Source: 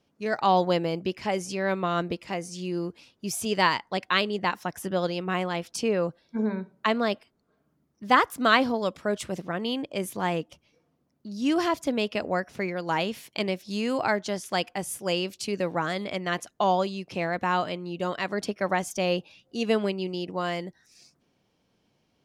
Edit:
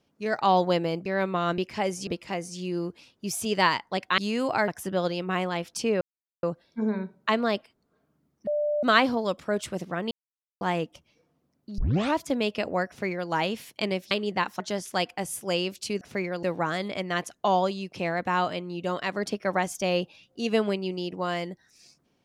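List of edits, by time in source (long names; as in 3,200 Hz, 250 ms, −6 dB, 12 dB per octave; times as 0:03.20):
0:01.06–0:01.55: move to 0:02.07
0:04.18–0:04.67: swap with 0:13.68–0:14.18
0:06.00: splice in silence 0.42 s
0:08.04–0:08.40: beep over 593 Hz −23 dBFS
0:09.68–0:10.18: silence
0:11.35: tape start 0.38 s
0:12.45–0:12.87: duplicate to 0:15.59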